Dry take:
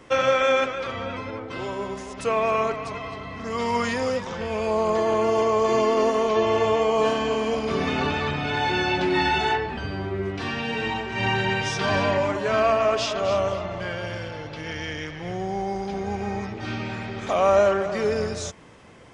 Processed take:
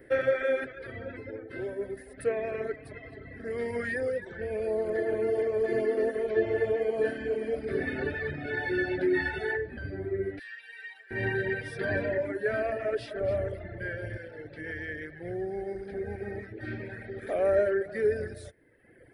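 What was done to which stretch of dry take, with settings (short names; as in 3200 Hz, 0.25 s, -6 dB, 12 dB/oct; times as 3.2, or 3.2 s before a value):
10.39–11.11 Bessel high-pass 2600 Hz
13.19–14.17 low shelf 98 Hz +9.5 dB
whole clip: reverb removal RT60 1.2 s; EQ curve 130 Hz 0 dB, 180 Hz -7 dB, 380 Hz +5 dB, 590 Hz 0 dB, 1100 Hz -22 dB, 1700 Hz +7 dB, 2800 Hz -15 dB, 4500 Hz -11 dB, 6600 Hz -27 dB, 10000 Hz +6 dB; gain -4 dB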